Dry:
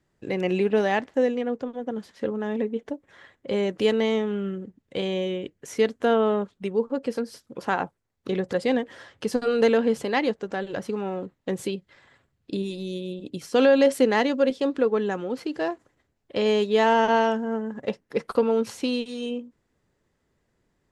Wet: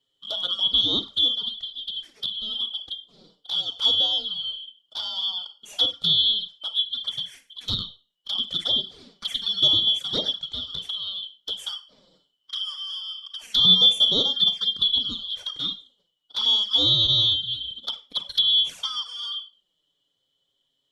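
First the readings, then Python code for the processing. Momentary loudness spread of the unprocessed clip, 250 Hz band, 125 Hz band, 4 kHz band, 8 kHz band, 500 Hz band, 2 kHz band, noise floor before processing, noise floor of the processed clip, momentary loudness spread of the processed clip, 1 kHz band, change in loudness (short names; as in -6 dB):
13 LU, -15.0 dB, -2.0 dB, +19.5 dB, n/a, -20.5 dB, under -15 dB, -74 dBFS, -75 dBFS, 15 LU, -15.5 dB, +3.5 dB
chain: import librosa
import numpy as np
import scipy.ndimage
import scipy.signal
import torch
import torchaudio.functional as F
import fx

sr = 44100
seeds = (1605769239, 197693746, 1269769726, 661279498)

y = fx.band_shuffle(x, sr, order='2413')
y = fx.rev_schroeder(y, sr, rt60_s=0.31, comb_ms=33, drr_db=9.0)
y = fx.env_flanger(y, sr, rest_ms=7.4, full_db=-18.0)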